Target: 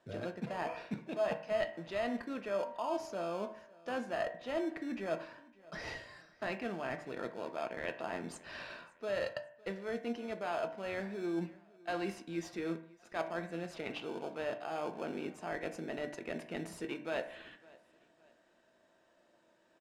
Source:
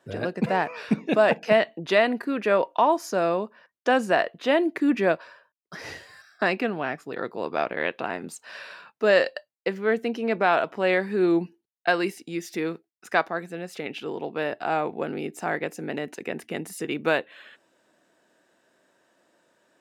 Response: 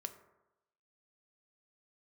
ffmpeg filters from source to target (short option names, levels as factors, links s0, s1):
-filter_complex "[0:a]asplit=2[s0][s1];[s1]acrusher=samples=23:mix=1:aa=0.000001,volume=0.355[s2];[s0][s2]amix=inputs=2:normalize=0,lowpass=4200,equalizer=f=800:w=1.5:g=2.5,areverse,acompressor=threshold=0.0398:ratio=6,areverse,aemphasis=mode=production:type=50fm,aecho=1:1:558|1116:0.0708|0.0262[s3];[1:a]atrim=start_sample=2205,asetrate=70560,aresample=44100[s4];[s3][s4]afir=irnorm=-1:irlink=0"